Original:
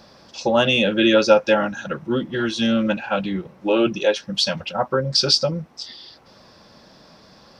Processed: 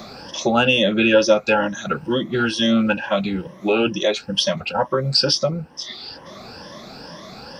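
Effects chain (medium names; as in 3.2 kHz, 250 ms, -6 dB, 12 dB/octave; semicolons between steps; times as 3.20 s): drifting ripple filter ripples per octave 1.2, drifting +2.2 Hz, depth 13 dB; three bands compressed up and down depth 40%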